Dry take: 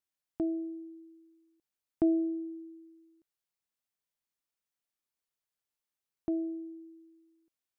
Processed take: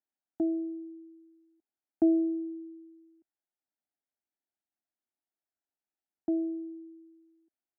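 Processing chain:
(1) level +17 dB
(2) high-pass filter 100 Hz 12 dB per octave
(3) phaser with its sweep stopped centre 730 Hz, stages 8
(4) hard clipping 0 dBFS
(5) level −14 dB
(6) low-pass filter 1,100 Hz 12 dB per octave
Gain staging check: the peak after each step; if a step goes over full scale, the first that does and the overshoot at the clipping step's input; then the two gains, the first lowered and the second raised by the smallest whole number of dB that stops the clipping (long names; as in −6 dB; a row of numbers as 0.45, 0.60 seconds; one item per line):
−1.5, −1.0, −1.5, −1.5, −15.5, −15.5 dBFS
no step passes full scale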